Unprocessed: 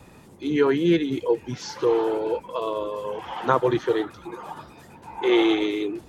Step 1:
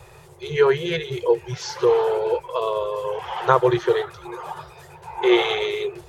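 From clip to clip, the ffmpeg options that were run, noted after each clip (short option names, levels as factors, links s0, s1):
-af "afftfilt=real='re*(1-between(b*sr/4096,170,350))':imag='im*(1-between(b*sr/4096,170,350))':win_size=4096:overlap=0.75,volume=1.58"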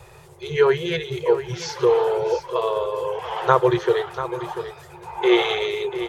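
-af "aecho=1:1:690:0.266"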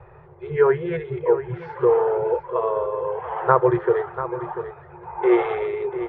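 -af "lowpass=f=1800:w=0.5412,lowpass=f=1800:w=1.3066"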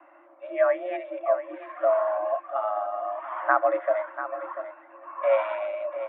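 -af "highpass=f=150:t=q:w=0.5412,highpass=f=150:t=q:w=1.307,lowpass=f=3100:t=q:w=0.5176,lowpass=f=3100:t=q:w=0.7071,lowpass=f=3100:t=q:w=1.932,afreqshift=190,volume=0.562"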